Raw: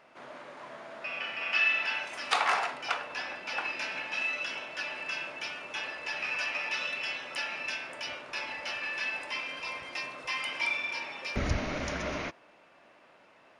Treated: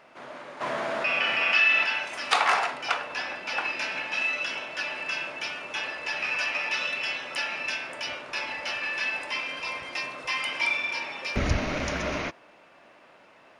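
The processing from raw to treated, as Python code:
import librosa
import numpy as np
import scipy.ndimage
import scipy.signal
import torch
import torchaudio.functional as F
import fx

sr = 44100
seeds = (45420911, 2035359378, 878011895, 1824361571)

y = fx.rattle_buzz(x, sr, strikes_db=-39.0, level_db=-33.0)
y = fx.env_flatten(y, sr, amount_pct=50, at=(0.6, 1.83), fade=0.02)
y = F.gain(torch.from_numpy(y), 4.5).numpy()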